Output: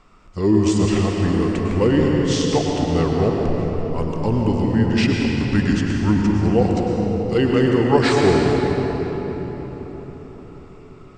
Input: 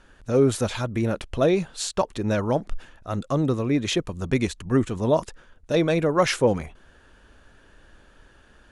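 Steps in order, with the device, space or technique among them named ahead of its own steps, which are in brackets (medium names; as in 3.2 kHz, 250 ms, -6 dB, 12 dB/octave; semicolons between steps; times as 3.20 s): slowed and reverbed (tape speed -22%; reverberation RT60 4.7 s, pre-delay 96 ms, DRR -1 dB); trim +1.5 dB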